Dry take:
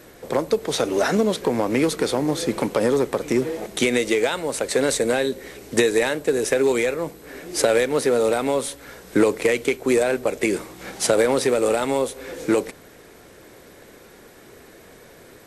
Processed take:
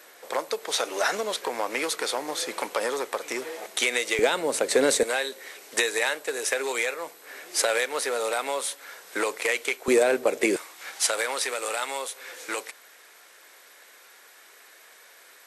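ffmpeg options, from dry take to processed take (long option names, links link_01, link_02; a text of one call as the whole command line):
ffmpeg -i in.wav -af "asetnsamples=nb_out_samples=441:pad=0,asendcmd='4.19 highpass f 260;5.03 highpass f 820;9.88 highpass f 310;10.56 highpass f 1100',highpass=770" out.wav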